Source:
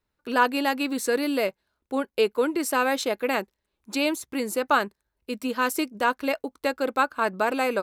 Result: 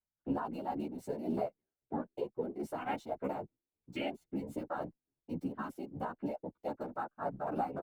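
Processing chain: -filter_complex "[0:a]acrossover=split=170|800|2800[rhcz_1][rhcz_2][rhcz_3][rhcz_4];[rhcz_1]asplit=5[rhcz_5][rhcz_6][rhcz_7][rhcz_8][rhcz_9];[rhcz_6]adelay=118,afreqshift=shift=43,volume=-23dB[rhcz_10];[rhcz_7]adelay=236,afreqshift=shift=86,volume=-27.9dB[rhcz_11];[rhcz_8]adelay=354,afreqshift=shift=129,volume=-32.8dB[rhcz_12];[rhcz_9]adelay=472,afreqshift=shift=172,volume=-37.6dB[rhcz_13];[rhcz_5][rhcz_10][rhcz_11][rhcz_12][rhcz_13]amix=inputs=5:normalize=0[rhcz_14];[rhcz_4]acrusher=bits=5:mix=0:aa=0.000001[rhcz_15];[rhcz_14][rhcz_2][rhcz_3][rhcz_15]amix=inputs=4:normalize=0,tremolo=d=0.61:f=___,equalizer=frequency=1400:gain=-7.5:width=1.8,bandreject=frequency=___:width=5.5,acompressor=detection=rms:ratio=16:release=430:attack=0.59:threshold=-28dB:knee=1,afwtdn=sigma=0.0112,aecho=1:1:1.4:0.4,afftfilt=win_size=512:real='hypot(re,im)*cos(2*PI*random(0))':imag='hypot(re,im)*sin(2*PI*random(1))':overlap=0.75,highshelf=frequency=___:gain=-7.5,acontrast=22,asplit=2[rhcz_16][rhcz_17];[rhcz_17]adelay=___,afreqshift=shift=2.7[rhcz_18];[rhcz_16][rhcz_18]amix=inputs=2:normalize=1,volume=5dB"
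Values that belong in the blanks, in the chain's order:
3.7, 510, 3500, 11.6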